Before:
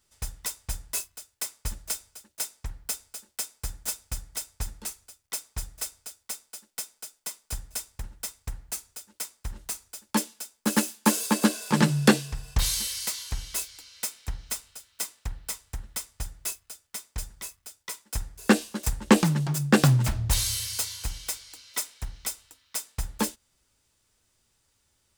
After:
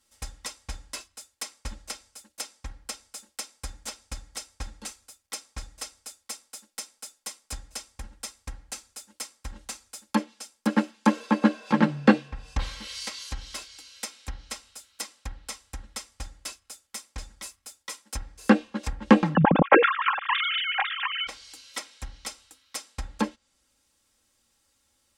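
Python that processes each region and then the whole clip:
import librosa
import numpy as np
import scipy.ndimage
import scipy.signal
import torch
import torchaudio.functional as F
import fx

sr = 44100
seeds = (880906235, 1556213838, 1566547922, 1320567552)

y = fx.chain(x, sr, fx.sine_speech(),
    fx.env_flatten(amount_pct=50), at=(19.35, 21.27))
y = fx.env_lowpass_down(y, sr, base_hz=2100.0, full_db=-23.5)
y = fx.low_shelf(y, sr, hz=66.0, db=-9.5)
y = y + 0.64 * np.pad(y, (int(3.7 * sr / 1000.0), 0))[:len(y)]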